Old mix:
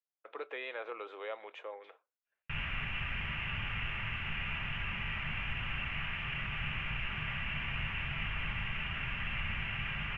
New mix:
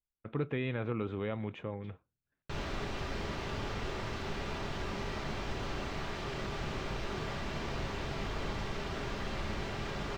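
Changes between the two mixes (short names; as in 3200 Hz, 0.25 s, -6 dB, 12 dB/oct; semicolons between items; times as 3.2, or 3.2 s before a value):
speech: remove inverse Chebyshev high-pass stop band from 190 Hz, stop band 50 dB; background: remove EQ curve 150 Hz 0 dB, 390 Hz -20 dB, 2800 Hz +12 dB, 4100 Hz -24 dB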